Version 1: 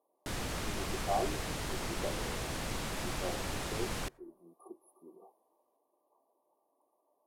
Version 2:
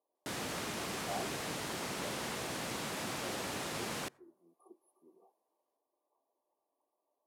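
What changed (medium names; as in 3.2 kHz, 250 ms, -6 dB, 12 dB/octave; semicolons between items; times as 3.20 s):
speech -8.5 dB; master: add high-pass 160 Hz 12 dB/octave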